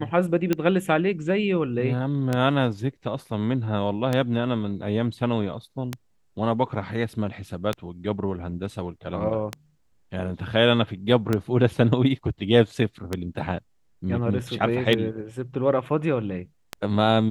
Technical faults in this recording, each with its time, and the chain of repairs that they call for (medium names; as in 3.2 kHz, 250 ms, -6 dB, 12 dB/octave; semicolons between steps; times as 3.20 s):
tick 33 1/3 rpm -10 dBFS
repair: de-click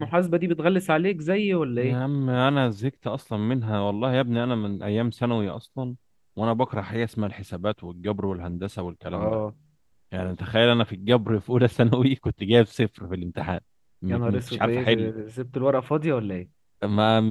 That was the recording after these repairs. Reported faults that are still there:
nothing left